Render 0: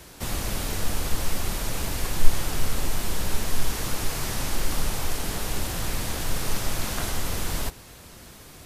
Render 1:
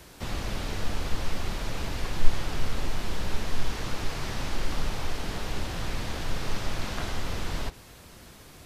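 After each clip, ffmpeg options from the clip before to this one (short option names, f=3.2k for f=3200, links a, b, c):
-filter_complex "[0:a]acrossover=split=5600[a][b];[b]acompressor=threshold=-52dB:ratio=4:attack=1:release=60[c];[a][c]amix=inputs=2:normalize=0,volume=-2.5dB"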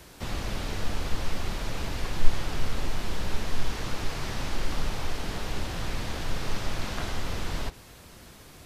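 -af anull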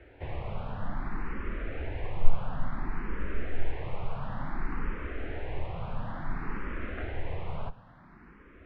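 -filter_complex "[0:a]lowpass=f=2.2k:w=0.5412,lowpass=f=2.2k:w=1.3066,asplit=2[a][b];[b]afreqshift=0.57[c];[a][c]amix=inputs=2:normalize=1"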